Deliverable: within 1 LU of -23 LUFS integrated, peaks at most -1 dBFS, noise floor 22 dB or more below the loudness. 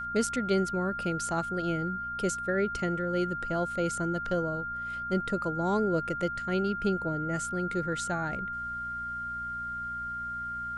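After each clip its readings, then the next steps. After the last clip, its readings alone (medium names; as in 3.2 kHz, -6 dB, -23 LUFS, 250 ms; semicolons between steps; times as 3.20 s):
hum 60 Hz; highest harmonic 240 Hz; hum level -48 dBFS; steady tone 1.4 kHz; tone level -33 dBFS; loudness -31.0 LUFS; peak level -16.5 dBFS; loudness target -23.0 LUFS
-> de-hum 60 Hz, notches 4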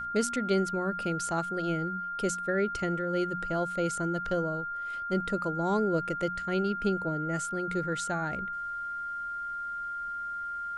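hum not found; steady tone 1.4 kHz; tone level -33 dBFS
-> band-stop 1.4 kHz, Q 30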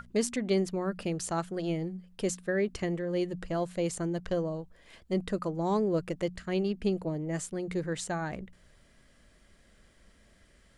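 steady tone not found; loudness -32.5 LUFS; peak level -17.0 dBFS; loudness target -23.0 LUFS
-> trim +9.5 dB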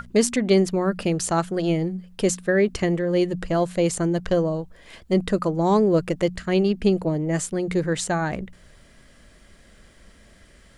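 loudness -23.0 LUFS; peak level -7.5 dBFS; noise floor -52 dBFS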